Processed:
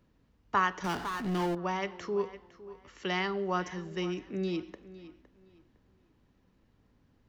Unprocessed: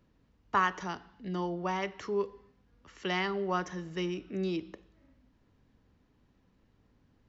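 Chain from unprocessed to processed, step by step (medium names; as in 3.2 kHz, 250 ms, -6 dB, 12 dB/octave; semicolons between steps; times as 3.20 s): tape echo 509 ms, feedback 27%, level -15.5 dB, low-pass 5.2 kHz; 0.84–1.55 s: power-law waveshaper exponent 0.5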